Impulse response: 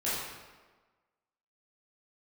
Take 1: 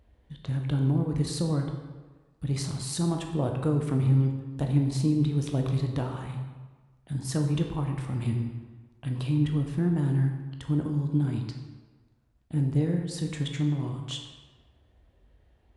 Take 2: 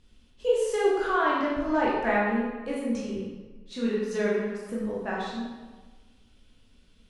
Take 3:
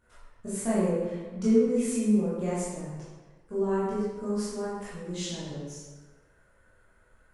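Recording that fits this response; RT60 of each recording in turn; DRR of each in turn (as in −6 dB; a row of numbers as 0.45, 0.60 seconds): 3; 1.4, 1.4, 1.4 seconds; 2.5, −6.0, −11.0 decibels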